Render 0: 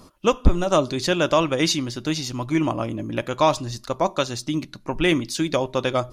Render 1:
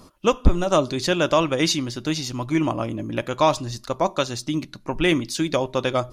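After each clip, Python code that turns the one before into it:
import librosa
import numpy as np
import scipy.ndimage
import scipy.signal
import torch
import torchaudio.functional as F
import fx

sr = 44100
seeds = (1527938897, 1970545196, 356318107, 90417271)

y = x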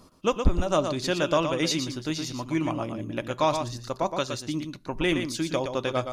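y = x + 10.0 ** (-7.0 / 20.0) * np.pad(x, (int(118 * sr / 1000.0), 0))[:len(x)]
y = y * librosa.db_to_amplitude(-5.5)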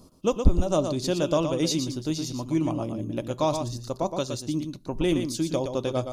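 y = fx.peak_eq(x, sr, hz=1800.0, db=-14.0, octaves=1.7)
y = y * librosa.db_to_amplitude(3.0)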